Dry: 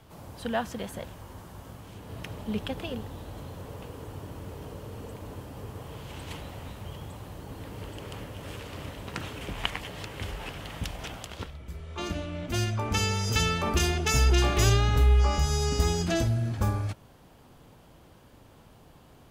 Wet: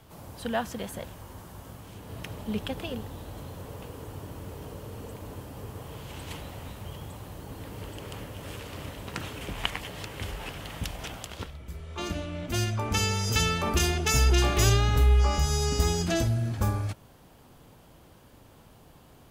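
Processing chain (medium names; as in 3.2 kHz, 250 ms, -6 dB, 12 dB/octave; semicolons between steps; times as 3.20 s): treble shelf 8.2 kHz +5.5 dB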